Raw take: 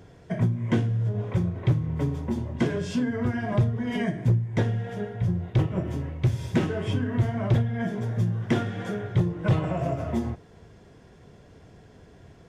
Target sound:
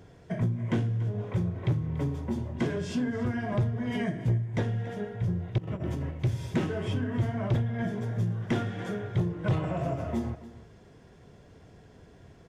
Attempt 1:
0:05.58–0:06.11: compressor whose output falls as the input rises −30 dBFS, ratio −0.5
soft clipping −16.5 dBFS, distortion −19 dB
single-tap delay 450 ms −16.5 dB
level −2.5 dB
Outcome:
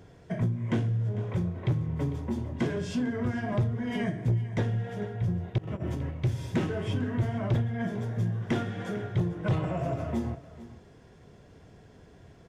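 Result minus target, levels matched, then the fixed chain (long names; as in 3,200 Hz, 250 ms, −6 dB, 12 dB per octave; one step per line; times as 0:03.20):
echo 164 ms late
0:05.58–0:06.11: compressor whose output falls as the input rises −30 dBFS, ratio −0.5
soft clipping −16.5 dBFS, distortion −19 dB
single-tap delay 286 ms −16.5 dB
level −2.5 dB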